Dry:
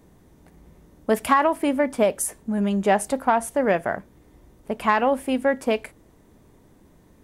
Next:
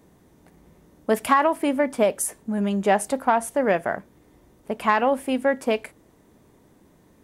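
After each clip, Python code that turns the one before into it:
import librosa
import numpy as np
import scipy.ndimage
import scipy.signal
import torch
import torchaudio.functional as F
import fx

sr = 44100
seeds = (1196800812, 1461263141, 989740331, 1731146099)

y = fx.low_shelf(x, sr, hz=67.0, db=-12.0)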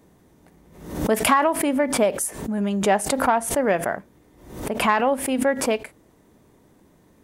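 y = fx.pre_swell(x, sr, db_per_s=85.0)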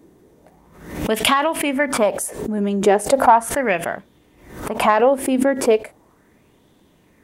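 y = fx.bell_lfo(x, sr, hz=0.37, low_hz=330.0, high_hz=3400.0, db=11)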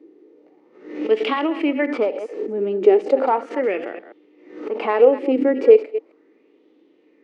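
y = fx.reverse_delay(x, sr, ms=133, wet_db=-11.0)
y = fx.cabinet(y, sr, low_hz=300.0, low_slope=24, high_hz=3900.0, hz=(310.0, 460.0, 670.0, 1000.0, 1600.0, 3500.0), db=(8, 7, -8, -10, -9, -8))
y = fx.hpss(y, sr, part='harmonic', gain_db=8)
y = y * librosa.db_to_amplitude(-7.5)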